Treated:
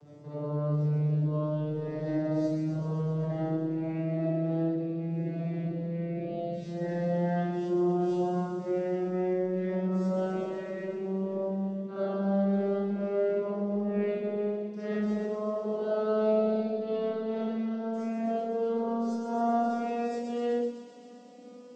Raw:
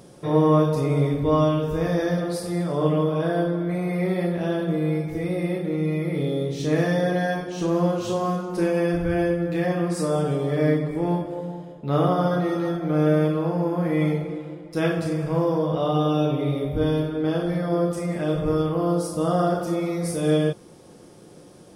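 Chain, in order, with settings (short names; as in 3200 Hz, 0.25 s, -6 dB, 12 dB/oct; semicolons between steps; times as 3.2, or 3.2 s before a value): vocoder on a gliding note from D3, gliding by +9 st; notches 60/120/180/240/300 Hz; reverse; compressor 5:1, threshold -32 dBFS, peak gain reduction 17 dB; reverse; thin delay 0.128 s, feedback 79%, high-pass 4700 Hz, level -3.5 dB; reverb RT60 0.50 s, pre-delay 22 ms, DRR -8 dB; gain -3 dB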